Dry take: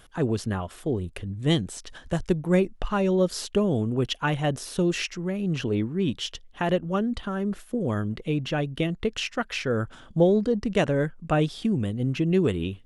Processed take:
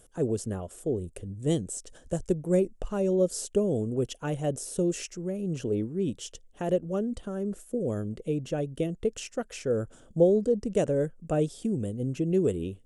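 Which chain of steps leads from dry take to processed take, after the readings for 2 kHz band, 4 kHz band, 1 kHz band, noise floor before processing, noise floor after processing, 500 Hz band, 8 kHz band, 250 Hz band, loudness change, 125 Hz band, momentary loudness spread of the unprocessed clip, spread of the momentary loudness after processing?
−13.5 dB, −11.5 dB, −9.5 dB, −51 dBFS, −57 dBFS, −1.0 dB, +1.5 dB, −4.0 dB, −3.0 dB, −5.0 dB, 7 LU, 9 LU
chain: octave-band graphic EQ 500/1,000/2,000/4,000/8,000 Hz +8/−8/−7/−9/+12 dB
level −5.5 dB

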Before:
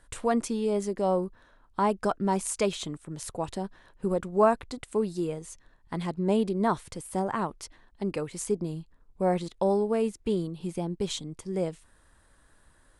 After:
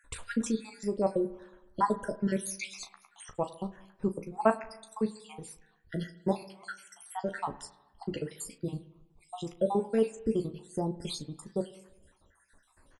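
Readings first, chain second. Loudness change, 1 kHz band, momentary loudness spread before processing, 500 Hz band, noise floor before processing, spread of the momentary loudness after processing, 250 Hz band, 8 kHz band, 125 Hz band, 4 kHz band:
−4.0 dB, −4.5 dB, 12 LU, −5.0 dB, −62 dBFS, 17 LU, −4.0 dB, −4.5 dB, −4.5 dB, −4.5 dB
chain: time-frequency cells dropped at random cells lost 65%
ambience of single reflections 14 ms −7 dB, 36 ms −12 dB
spring reverb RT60 1 s, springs 47/51 ms, chirp 60 ms, DRR 15 dB

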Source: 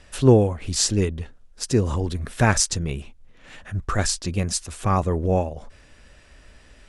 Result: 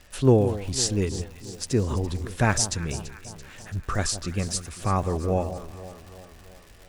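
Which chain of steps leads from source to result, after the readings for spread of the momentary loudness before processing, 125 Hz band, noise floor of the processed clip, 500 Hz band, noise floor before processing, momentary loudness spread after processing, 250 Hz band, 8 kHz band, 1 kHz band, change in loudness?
15 LU, −3.0 dB, −50 dBFS, −3.0 dB, −52 dBFS, 20 LU, −3.0 dB, −3.5 dB, −3.0 dB, −3.5 dB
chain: surface crackle 210 per second −35 dBFS
delay that swaps between a low-pass and a high-pass 168 ms, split 1,100 Hz, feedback 74%, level −12 dB
level −3.5 dB

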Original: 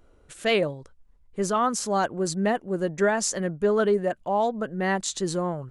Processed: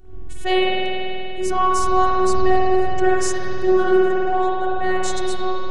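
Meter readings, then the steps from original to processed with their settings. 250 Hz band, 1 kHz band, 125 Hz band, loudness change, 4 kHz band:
+5.5 dB, +8.5 dB, −1.0 dB, +5.5 dB, +6.0 dB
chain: wind on the microphone 110 Hz −39 dBFS
phases set to zero 372 Hz
spring reverb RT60 3.1 s, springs 48 ms, chirp 40 ms, DRR −7.5 dB
level +1.5 dB

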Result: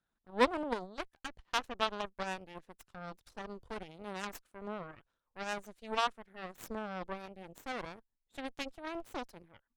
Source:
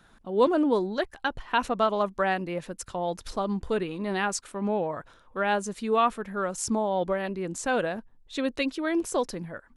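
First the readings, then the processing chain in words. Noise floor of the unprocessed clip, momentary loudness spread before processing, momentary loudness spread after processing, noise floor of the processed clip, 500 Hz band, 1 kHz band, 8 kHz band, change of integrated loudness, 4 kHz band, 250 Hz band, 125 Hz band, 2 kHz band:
−58 dBFS, 9 LU, 16 LU, −85 dBFS, −13.5 dB, −10.0 dB, −16.0 dB, −11.0 dB, −4.5 dB, −14.5 dB, −14.5 dB, −9.0 dB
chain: harmonic generator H 3 −10 dB, 8 −27 dB, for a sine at −10.5 dBFS
level −2.5 dB

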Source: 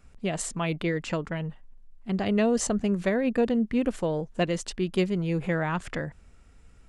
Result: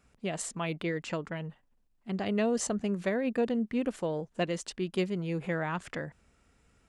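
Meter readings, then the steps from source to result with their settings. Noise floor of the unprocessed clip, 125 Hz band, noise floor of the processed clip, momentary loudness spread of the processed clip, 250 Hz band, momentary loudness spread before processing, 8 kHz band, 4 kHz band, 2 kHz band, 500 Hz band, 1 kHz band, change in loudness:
−54 dBFS, −6.0 dB, −69 dBFS, 10 LU, −5.5 dB, 10 LU, −4.0 dB, −4.0 dB, −4.0 dB, −4.5 dB, −4.0 dB, −5.0 dB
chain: high-pass filter 140 Hz 6 dB per octave
level −4 dB

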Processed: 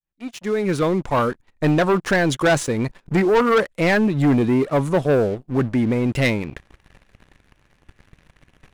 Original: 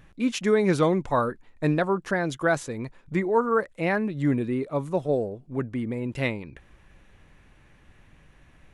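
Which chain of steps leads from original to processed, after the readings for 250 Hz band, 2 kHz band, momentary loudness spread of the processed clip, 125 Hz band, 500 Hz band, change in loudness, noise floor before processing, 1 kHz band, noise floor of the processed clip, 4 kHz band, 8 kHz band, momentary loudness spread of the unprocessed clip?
+6.5 dB, +7.0 dB, 8 LU, +7.5 dB, +5.5 dB, +6.5 dB, −57 dBFS, +5.0 dB, −64 dBFS, +8.5 dB, +8.0 dB, 9 LU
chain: fade in at the beginning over 2.10 s
leveller curve on the samples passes 3

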